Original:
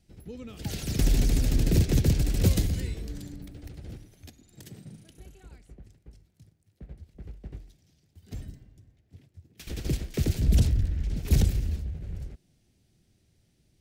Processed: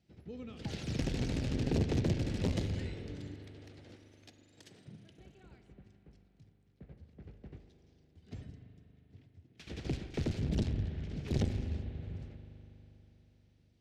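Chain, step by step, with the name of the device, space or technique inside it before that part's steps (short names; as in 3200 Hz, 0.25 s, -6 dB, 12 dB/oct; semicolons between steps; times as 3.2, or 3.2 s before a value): valve radio (BPF 87–4400 Hz; tube stage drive 18 dB, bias 0.75; core saturation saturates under 260 Hz); 3.34–4.88 tone controls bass -15 dB, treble +5 dB; spring tank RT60 3.8 s, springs 40 ms, chirp 40 ms, DRR 8 dB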